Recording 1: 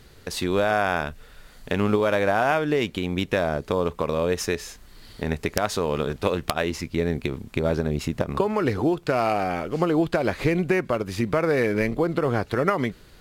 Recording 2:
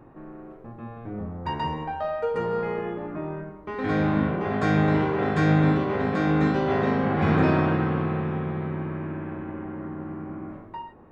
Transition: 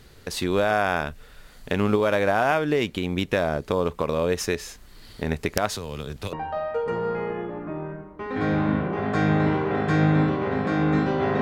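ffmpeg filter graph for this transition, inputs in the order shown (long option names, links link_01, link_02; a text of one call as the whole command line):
ffmpeg -i cue0.wav -i cue1.wav -filter_complex "[0:a]asettb=1/sr,asplit=3[link_01][link_02][link_03];[link_01]atrim=end=5.724[link_04];[link_02]atrim=start=5.72:end=6.33,asetpts=PTS-STARTPTS,afade=type=in:duration=0.004:curve=qsin,afade=type=out:start_time=0.606:duration=0.004:curve=qsin,acrossover=split=140|3000[link_05][link_06][link_07];[link_06]acompressor=threshold=-37dB:ratio=2.5:attack=3.2:release=140:knee=2.83:detection=peak[link_08];[link_05][link_08][link_07]amix=inputs=3:normalize=0[link_09];[link_03]atrim=start=6.326[link_10];[link_04][link_09]acrossfade=duration=0.004:curve1=hsin:curve2=qsin[link_11];[link_11][link_10]acrossfade=duration=0.004:curve1=qsin:curve2=hsin,apad=whole_dur=11.41,atrim=end=11.41,atrim=end=6.332[link_12];[1:a]atrim=start=1.808:end=6.89[link_13];[link_12][link_13]acrossfade=duration=0.004:curve1=hsin:curve2=hsin" out.wav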